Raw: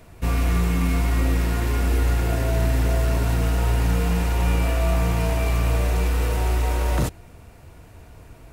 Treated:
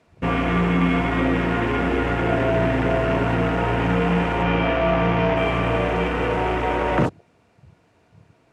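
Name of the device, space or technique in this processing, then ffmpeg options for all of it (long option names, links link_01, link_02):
over-cleaned archive recording: -filter_complex "[0:a]highpass=170,lowpass=6000,afwtdn=0.0141,asettb=1/sr,asplit=3[link_01][link_02][link_03];[link_01]atrim=end=4.434[link_04];[link_02]atrim=start=4.43:end=5.37,asetpts=PTS-STARTPTS,afade=type=in:duration=0.004:curve=qsin,afade=type=out:start_time=0.936:duration=0.004:curve=qsin,lowpass=frequency=6100:width=0.5412,lowpass=frequency=6100:width=1.3066[link_05];[link_03]atrim=start=5.366[link_06];[link_04][link_05]acrossfade=duration=0.004:curve1=hsin:curve2=qsin[link_07];[link_07][link_06]acrossfade=duration=0.004:curve1=qsin:curve2=hsin,volume=8dB"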